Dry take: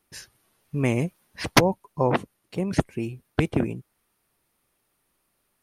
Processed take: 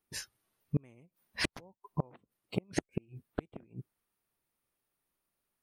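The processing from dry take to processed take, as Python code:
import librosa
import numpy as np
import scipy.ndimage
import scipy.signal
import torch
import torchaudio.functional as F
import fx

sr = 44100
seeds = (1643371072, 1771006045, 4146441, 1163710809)

y = fx.noise_reduce_blind(x, sr, reduce_db=14)
y = fx.gate_flip(y, sr, shuts_db=-19.0, range_db=-36)
y = y * librosa.db_to_amplitude(1.0)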